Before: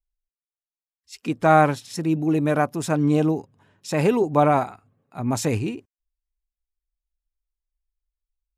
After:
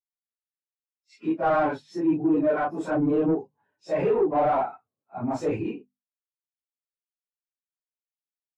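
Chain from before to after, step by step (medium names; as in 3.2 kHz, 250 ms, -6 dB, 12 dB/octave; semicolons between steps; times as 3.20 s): phase randomisation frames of 100 ms; band-stop 1.2 kHz, Q 29; overdrive pedal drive 26 dB, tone 1.6 kHz, clips at -4.5 dBFS; hum notches 50/100/150/200/250 Hz; spectral contrast expander 1.5:1; trim -8.5 dB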